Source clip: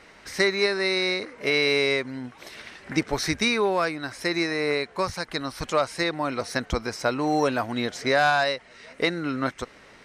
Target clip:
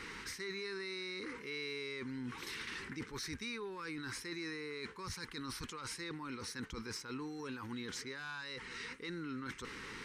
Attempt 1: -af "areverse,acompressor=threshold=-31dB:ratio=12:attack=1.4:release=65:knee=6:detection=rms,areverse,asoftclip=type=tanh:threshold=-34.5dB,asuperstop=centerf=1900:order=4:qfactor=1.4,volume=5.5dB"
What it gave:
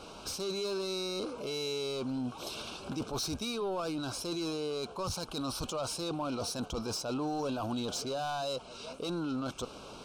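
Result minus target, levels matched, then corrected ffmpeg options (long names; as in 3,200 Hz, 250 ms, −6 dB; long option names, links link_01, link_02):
2,000 Hz band −11.5 dB; downward compressor: peak gain reduction −11 dB
-af "areverse,acompressor=threshold=-43dB:ratio=12:attack=1.4:release=65:knee=6:detection=rms,areverse,asoftclip=type=tanh:threshold=-34.5dB,asuperstop=centerf=650:order=4:qfactor=1.4,volume=5.5dB"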